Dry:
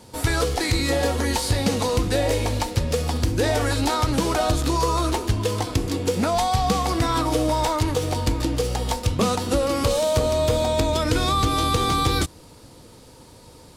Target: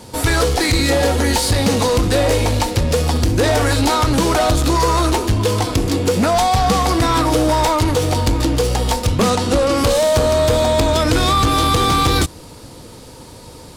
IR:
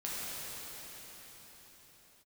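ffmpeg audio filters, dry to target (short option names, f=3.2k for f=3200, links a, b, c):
-filter_complex "[0:a]asettb=1/sr,asplit=3[a][b][c];[a]atrim=end=0.844[d];[b]atrim=start=0.84:end=1.47,asetpts=PTS-STARTPTS,afade=t=in:d=0.004:c=qsin,afade=t=out:st=0.626:d=0.004:c=qsin,bandreject=f=1.1k:w=9.6[e];[c]atrim=start=1.466[f];[d][e]acrossfade=d=0.004:c1=hsin:c2=qsin[g];[g][f]acrossfade=d=0.004:c1=qsin:c2=hsin,asettb=1/sr,asplit=3[h][i][j];[h]atrim=end=9.304[k];[i]atrim=start=9.3:end=9.78,asetpts=PTS-STARTPTS,afade=t=in:d=0.004:c=qsin,afade=t=out:st=0.476:d=0.004:c=qsin,lowpass=9.3k[l];[j]atrim=start=9.776[m];[k][l]acrossfade=d=0.004:c1=hsin:c2=qsin[n];[n][m]acrossfade=d=0.004:c1=qsin:c2=hsin,asoftclip=type=tanh:threshold=-18.5dB,volume=9dB"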